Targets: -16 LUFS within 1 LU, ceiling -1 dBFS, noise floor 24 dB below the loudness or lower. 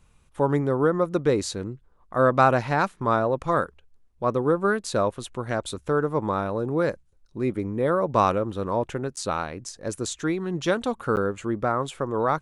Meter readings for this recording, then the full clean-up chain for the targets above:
dropouts 2; longest dropout 9.4 ms; loudness -25.0 LUFS; peak -5.0 dBFS; loudness target -16.0 LUFS
-> interpolate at 9.16/11.16, 9.4 ms; gain +9 dB; limiter -1 dBFS

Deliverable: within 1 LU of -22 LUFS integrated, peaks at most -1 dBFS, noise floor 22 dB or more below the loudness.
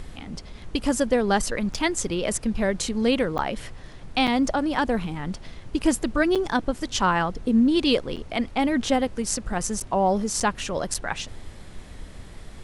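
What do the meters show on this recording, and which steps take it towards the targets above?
dropouts 8; longest dropout 6.8 ms; noise floor -42 dBFS; noise floor target -47 dBFS; loudness -24.5 LUFS; peak -8.0 dBFS; loudness target -22.0 LUFS
-> interpolate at 1.74/3.38/4.27/6.35/8.16/9.8/10.4/10.94, 6.8 ms; noise print and reduce 6 dB; gain +2.5 dB

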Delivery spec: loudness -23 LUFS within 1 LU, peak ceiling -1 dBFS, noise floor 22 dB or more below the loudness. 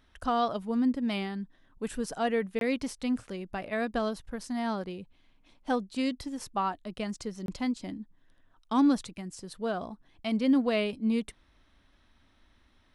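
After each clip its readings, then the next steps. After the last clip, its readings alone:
dropouts 2; longest dropout 22 ms; loudness -31.5 LUFS; peak -15.0 dBFS; loudness target -23.0 LUFS
-> interpolate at 2.59/7.46, 22 ms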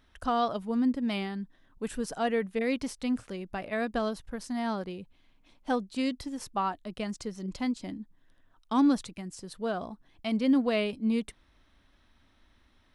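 dropouts 0; loudness -31.5 LUFS; peak -15.0 dBFS; loudness target -23.0 LUFS
-> gain +8.5 dB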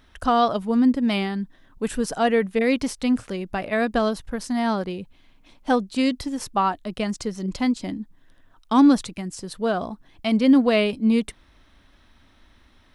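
loudness -23.0 LUFS; peak -6.5 dBFS; noise floor -57 dBFS

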